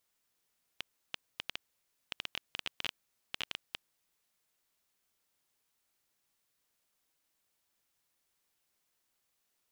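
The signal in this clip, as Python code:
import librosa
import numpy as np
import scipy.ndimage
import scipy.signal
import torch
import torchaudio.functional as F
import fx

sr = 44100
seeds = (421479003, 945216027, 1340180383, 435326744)

y = fx.geiger_clicks(sr, seeds[0], length_s=3.3, per_s=8.0, level_db=-17.5)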